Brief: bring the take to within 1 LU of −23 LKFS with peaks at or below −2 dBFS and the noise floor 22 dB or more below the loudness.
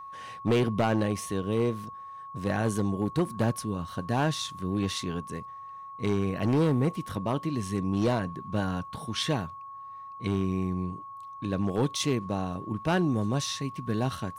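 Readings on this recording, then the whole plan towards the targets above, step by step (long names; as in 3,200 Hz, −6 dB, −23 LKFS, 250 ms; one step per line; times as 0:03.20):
share of clipped samples 1.1%; peaks flattened at −19.0 dBFS; interfering tone 1,100 Hz; level of the tone −40 dBFS; integrated loudness −29.5 LKFS; sample peak −19.0 dBFS; target loudness −23.0 LKFS
→ clipped peaks rebuilt −19 dBFS
notch filter 1,100 Hz, Q 30
level +6.5 dB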